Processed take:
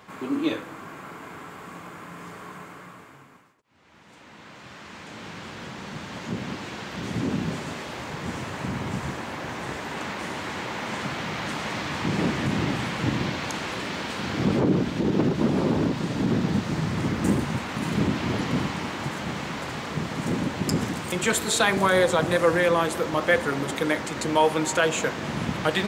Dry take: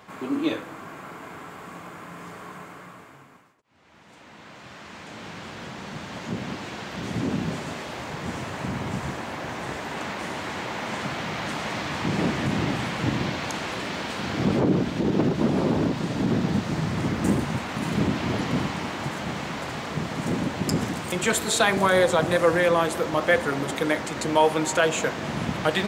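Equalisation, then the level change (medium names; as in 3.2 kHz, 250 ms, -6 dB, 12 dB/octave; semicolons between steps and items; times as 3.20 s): peaking EQ 680 Hz -3 dB 0.43 oct; 0.0 dB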